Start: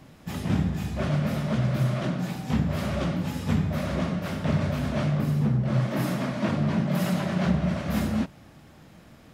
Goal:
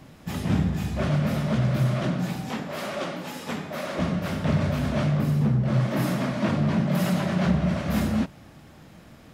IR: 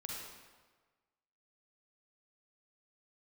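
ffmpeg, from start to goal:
-filter_complex "[0:a]asettb=1/sr,asplit=3[a][b][c];[a]atrim=end=2.494[d];[b]atrim=start=2.49:end=3.99,asetpts=PTS-STARTPTS,afade=t=in:d=0.004:c=qsin,afade=t=out:st=1.496:d=0.004:c=qsin,highpass=360[e];[c]atrim=start=3.986[f];[d][e]acrossfade=d=0.004:c1=hsin:c2=qsin[g];[g][f]acrossfade=d=0.004:c1=qsin:c2=hsin,asplit=2[h][i];[i]asoftclip=type=hard:threshold=-23dB,volume=-11dB[j];[h][j]amix=inputs=2:normalize=0"

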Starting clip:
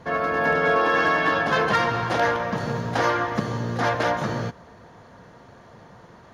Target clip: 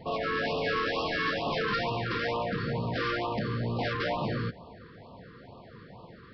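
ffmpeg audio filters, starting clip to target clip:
-af "aresample=11025,asoftclip=type=tanh:threshold=-25.5dB,aresample=44100,afftfilt=real='re*(1-between(b*sr/1024,680*pow(1800/680,0.5+0.5*sin(2*PI*2.2*pts/sr))/1.41,680*pow(1800/680,0.5+0.5*sin(2*PI*2.2*pts/sr))*1.41))':imag='im*(1-between(b*sr/1024,680*pow(1800/680,0.5+0.5*sin(2*PI*2.2*pts/sr))/1.41,680*pow(1800/680,0.5+0.5*sin(2*PI*2.2*pts/sr))*1.41))':win_size=1024:overlap=0.75"

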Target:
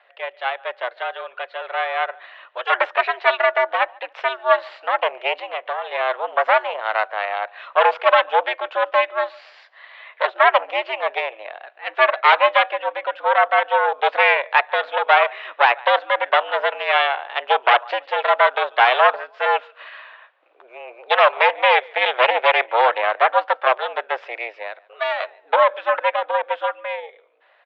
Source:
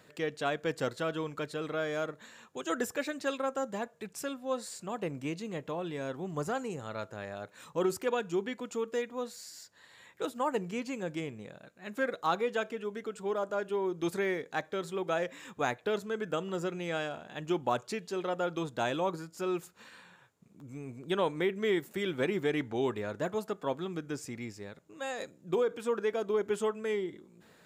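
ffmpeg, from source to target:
-filter_complex "[0:a]aecho=1:1:144|288:0.0668|0.016,dynaudnorm=f=270:g=17:m=10dB,aeval=exprs='0.501*(cos(1*acos(clip(val(0)/0.501,-1,1)))-cos(1*PI/2))+0.112*(cos(5*acos(clip(val(0)/0.501,-1,1)))-cos(5*PI/2))+0.224*(cos(6*acos(clip(val(0)/0.501,-1,1)))-cos(6*PI/2))+0.0447*(cos(7*acos(clip(val(0)/0.501,-1,1)))-cos(7*PI/2))':c=same,asettb=1/sr,asplit=3[a][b][c];[a]atrim=end=5.344[d];[b]atrim=start=5.34:end=5.92,asetpts=PTS-STARTPTS,afade=t=in:d=0.004:c=qsin,afade=t=out:st=0.576:d=0.004:c=qsin,acompressor=threshold=-21dB:ratio=6[e];[c]atrim=start=5.916[f];[d][e]acrossfade=d=0.004:c1=hsin:c2=qsin[g];[g][f]acrossfade=d=0.004:c1=qsin:c2=hsin,highpass=f=480:t=q:w=0.5412,highpass=f=480:t=q:w=1.307,lowpass=f=3.2k:t=q:w=0.5176,lowpass=f=3.2k:t=q:w=0.7071,lowpass=f=3.2k:t=q:w=1.932,afreqshift=110,volume=2.5dB"

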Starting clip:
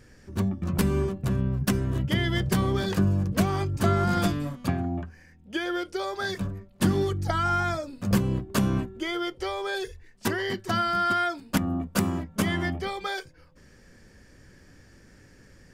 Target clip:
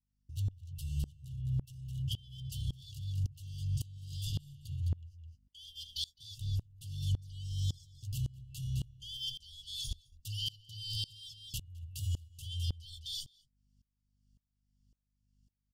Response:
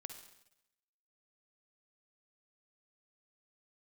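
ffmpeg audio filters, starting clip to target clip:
-filter_complex "[0:a]afftfilt=real='re*(1-between(b*sr/4096,140,2700))':imag='im*(1-between(b*sr/4096,140,2700))':win_size=4096:overlap=0.75,agate=range=-32dB:threshold=-44dB:ratio=16:detection=peak,areverse,acompressor=threshold=-37dB:ratio=6,areverse,alimiter=level_in=12.5dB:limit=-24dB:level=0:latency=1:release=16,volume=-12.5dB,asplit=2[a][b];[b]adelay=209.9,volume=-9dB,highshelf=f=4k:g=-4.72[c];[a][c]amix=inputs=2:normalize=0,aeval=exprs='val(0)+0.000158*(sin(2*PI*50*n/s)+sin(2*PI*2*50*n/s)/2+sin(2*PI*3*50*n/s)/3+sin(2*PI*4*50*n/s)/4+sin(2*PI*5*50*n/s)/5)':c=same,aeval=exprs='val(0)*pow(10,-25*if(lt(mod(-1.8*n/s,1),2*abs(-1.8)/1000),1-mod(-1.8*n/s,1)/(2*abs(-1.8)/1000),(mod(-1.8*n/s,1)-2*abs(-1.8)/1000)/(1-2*abs(-1.8)/1000))/20)':c=same,volume=11dB"

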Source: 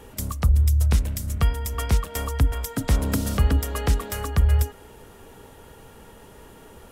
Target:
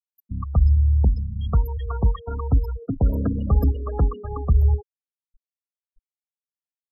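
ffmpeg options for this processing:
-filter_complex "[0:a]highshelf=f=5.7k:g=-3,acrossover=split=1800[a][b];[a]adelay=120[c];[c][b]amix=inputs=2:normalize=0,afftfilt=real='re*gte(hypot(re,im),0.0794)':imag='im*gte(hypot(re,im),0.0794)':win_size=1024:overlap=0.75,volume=1.5dB"

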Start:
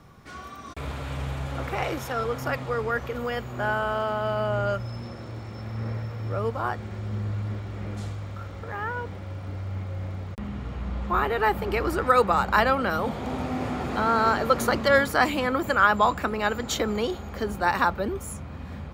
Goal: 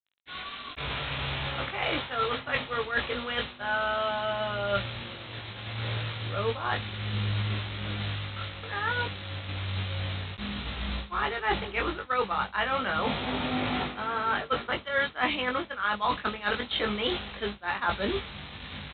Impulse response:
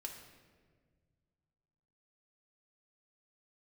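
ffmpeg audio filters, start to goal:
-filter_complex "[0:a]aresample=8000,acrusher=bits=6:mix=0:aa=0.000001,aresample=44100,crystalizer=i=9:c=0,areverse,acompressor=threshold=-25dB:ratio=10,areverse,agate=range=-33dB:threshold=-26dB:ratio=3:detection=peak,asplit=2[a][b];[b]adelay=20,volume=-4dB[c];[a][c]amix=inputs=2:normalize=0"

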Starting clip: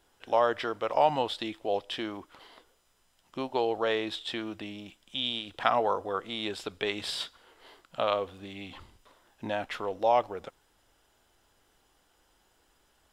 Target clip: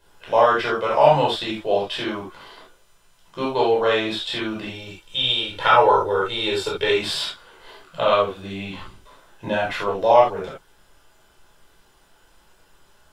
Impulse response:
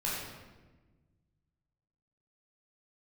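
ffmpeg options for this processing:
-filter_complex "[0:a]asettb=1/sr,asplit=3[a][b][c];[a]atrim=end=4.684[d];[b]atrim=start=4.68:end=6.94,asetpts=PTS-STARTPTS,afade=t=in:d=0.004:c=qsin,afade=t=out:st=2.256:d=0.004:c=qsin,aecho=1:1:2.2:0.65,atrim=end_sample=99666[e];[c]atrim=start=6.936[f];[d][e]acrossfade=d=0.004:c1=hsin:c2=qsin[g];[g][f]acrossfade=d=0.004:c1=qsin:c2=hsin[h];[1:a]atrim=start_sample=2205,atrim=end_sample=3969[i];[h][i]afir=irnorm=-1:irlink=0,volume=6dB"

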